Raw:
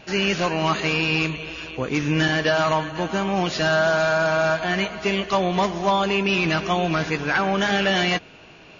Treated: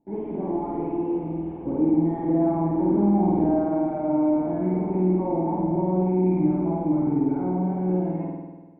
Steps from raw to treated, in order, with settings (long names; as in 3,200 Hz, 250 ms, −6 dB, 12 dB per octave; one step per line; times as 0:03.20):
source passing by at 0:03.42, 25 m/s, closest 24 metres
in parallel at −6 dB: fuzz pedal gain 45 dB, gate −48 dBFS
on the sum: formant resonators in series u
spring reverb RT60 1.3 s, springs 49 ms, chirp 40 ms, DRR −5 dB